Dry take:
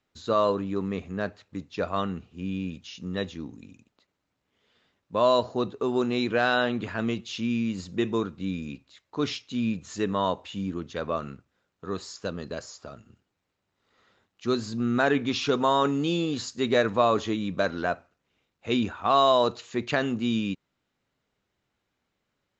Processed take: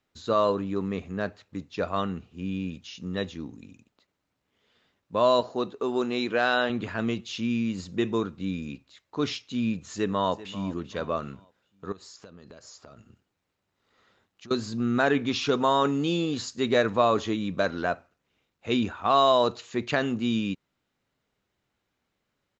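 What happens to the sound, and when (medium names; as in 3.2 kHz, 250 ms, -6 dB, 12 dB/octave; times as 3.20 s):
5.41–6.70 s: peaking EQ 75 Hz -12.5 dB 1.9 oct
9.92–10.66 s: echo throw 390 ms, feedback 35%, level -16.5 dB
11.92–14.51 s: compression 12:1, threshold -43 dBFS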